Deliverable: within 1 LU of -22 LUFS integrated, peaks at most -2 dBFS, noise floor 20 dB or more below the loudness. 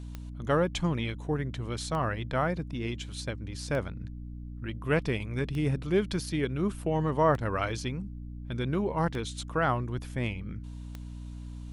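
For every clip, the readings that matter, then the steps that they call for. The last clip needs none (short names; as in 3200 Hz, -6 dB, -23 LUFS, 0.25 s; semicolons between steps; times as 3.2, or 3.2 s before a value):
clicks 7; hum 60 Hz; harmonics up to 300 Hz; hum level -37 dBFS; loudness -31.0 LUFS; peak -12.0 dBFS; loudness target -22.0 LUFS
-> de-click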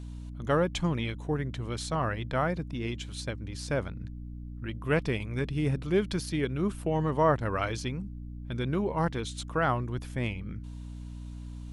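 clicks 0; hum 60 Hz; harmonics up to 300 Hz; hum level -37 dBFS
-> notches 60/120/180/240/300 Hz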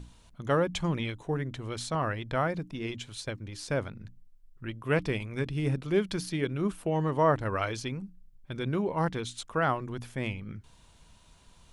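hum none; loudness -31.5 LUFS; peak -12.0 dBFS; loudness target -22.0 LUFS
-> gain +9.5 dB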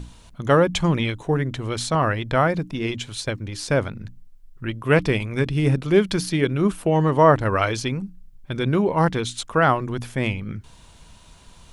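loudness -22.0 LUFS; peak -2.5 dBFS; noise floor -49 dBFS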